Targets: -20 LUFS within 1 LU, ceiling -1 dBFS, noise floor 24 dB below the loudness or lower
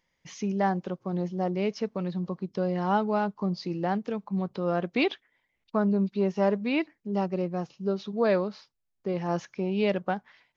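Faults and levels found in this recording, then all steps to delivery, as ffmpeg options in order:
loudness -29.0 LUFS; peak -13.0 dBFS; loudness target -20.0 LUFS
-> -af "volume=9dB"

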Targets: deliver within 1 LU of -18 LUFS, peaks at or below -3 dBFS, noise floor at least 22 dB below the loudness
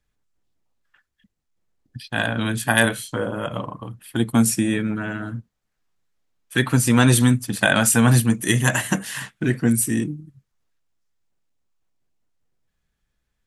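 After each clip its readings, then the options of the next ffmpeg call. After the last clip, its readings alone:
loudness -20.0 LUFS; peak -1.5 dBFS; loudness target -18.0 LUFS
-> -af "volume=2dB,alimiter=limit=-3dB:level=0:latency=1"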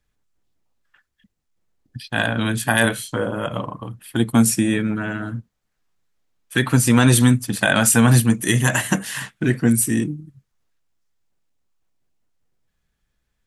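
loudness -18.5 LUFS; peak -3.0 dBFS; noise floor -75 dBFS

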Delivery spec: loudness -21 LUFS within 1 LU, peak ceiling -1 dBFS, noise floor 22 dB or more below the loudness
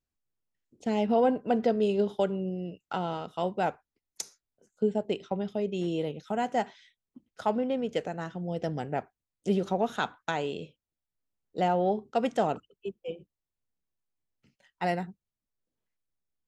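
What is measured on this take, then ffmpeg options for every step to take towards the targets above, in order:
loudness -30.5 LUFS; peak -13.5 dBFS; loudness target -21.0 LUFS
-> -af "volume=9.5dB"

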